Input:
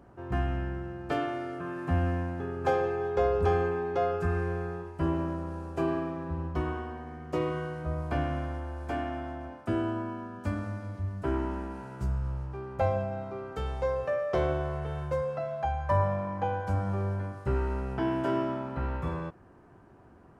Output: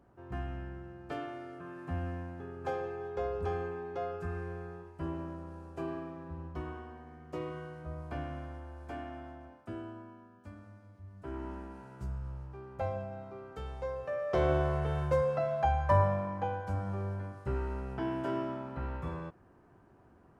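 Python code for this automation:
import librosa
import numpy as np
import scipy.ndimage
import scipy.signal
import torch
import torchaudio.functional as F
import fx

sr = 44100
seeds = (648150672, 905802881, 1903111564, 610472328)

y = fx.gain(x, sr, db=fx.line((9.26, -9.0), (10.45, -17.5), (11.0, -17.5), (11.49, -8.0), (14.03, -8.0), (14.56, 2.0), (15.76, 2.0), (16.63, -5.5)))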